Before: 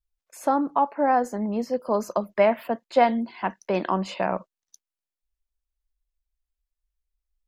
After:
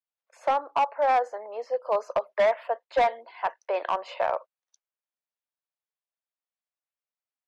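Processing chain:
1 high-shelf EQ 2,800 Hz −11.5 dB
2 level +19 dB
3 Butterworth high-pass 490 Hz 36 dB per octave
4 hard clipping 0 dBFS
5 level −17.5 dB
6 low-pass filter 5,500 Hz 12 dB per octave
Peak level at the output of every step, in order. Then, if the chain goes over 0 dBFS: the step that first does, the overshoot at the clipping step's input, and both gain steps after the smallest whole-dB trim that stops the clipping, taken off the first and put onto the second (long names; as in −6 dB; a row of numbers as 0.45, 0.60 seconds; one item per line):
−7.5, +11.5, +9.5, 0.0, −17.5, −17.0 dBFS
step 2, 9.5 dB
step 2 +9 dB, step 5 −7.5 dB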